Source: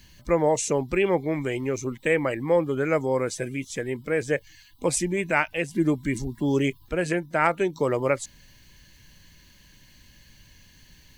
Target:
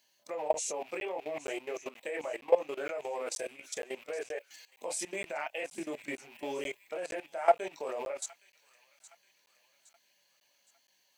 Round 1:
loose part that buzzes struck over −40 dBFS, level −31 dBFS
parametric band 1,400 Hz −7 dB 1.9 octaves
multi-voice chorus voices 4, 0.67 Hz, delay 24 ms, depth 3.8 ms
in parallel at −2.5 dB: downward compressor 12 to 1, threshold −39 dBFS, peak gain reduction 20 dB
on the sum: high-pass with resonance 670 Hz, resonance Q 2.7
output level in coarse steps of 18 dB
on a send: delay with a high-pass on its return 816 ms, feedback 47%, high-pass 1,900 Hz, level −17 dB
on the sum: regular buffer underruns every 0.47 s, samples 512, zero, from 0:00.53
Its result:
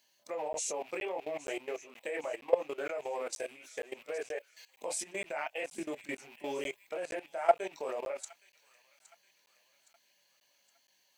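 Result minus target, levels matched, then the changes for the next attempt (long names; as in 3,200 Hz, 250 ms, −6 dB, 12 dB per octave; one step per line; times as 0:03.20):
downward compressor: peak gain reduction +7.5 dB
change: downward compressor 12 to 1, threshold −31 dBFS, peak gain reduction 12.5 dB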